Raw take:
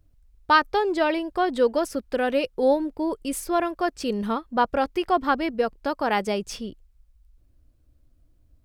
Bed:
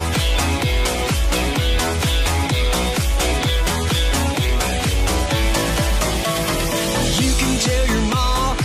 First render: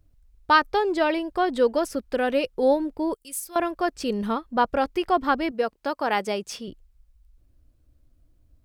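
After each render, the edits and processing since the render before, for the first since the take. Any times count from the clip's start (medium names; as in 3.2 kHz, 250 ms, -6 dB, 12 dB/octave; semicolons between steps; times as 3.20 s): 3.14–3.56 s: pre-emphasis filter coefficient 0.9; 5.51–6.68 s: high-pass 270 Hz 6 dB/octave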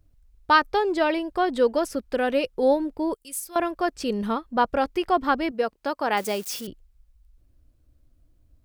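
6.17–6.67 s: zero-crossing glitches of -29 dBFS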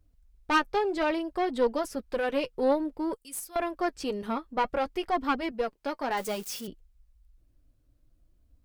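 single-diode clipper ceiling -20 dBFS; flange 0.58 Hz, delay 3.8 ms, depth 3.8 ms, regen -42%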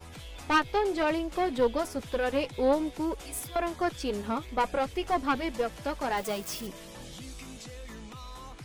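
add bed -26 dB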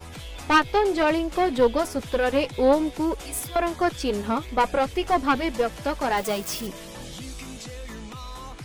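trim +6 dB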